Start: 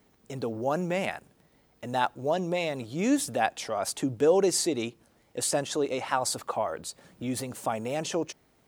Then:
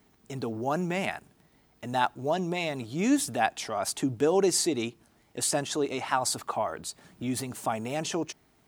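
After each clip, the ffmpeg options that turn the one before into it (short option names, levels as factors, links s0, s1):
-af "equalizer=f=520:w=7.6:g=-13,volume=1.12"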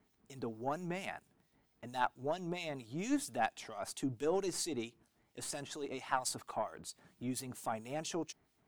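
-filter_complex "[0:a]aeval=exprs='0.376*(cos(1*acos(clip(val(0)/0.376,-1,1)))-cos(1*PI/2))+0.0335*(cos(3*acos(clip(val(0)/0.376,-1,1)))-cos(3*PI/2))+0.0211*(cos(4*acos(clip(val(0)/0.376,-1,1)))-cos(4*PI/2))':c=same,acrossover=split=2400[s0][s1];[s0]aeval=exprs='val(0)*(1-0.7/2+0.7/2*cos(2*PI*4.4*n/s))':c=same[s2];[s1]aeval=exprs='val(0)*(1-0.7/2-0.7/2*cos(2*PI*4.4*n/s))':c=same[s3];[s2][s3]amix=inputs=2:normalize=0,volume=0.596"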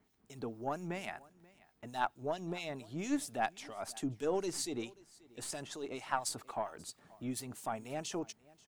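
-af "aecho=1:1:534:0.0708"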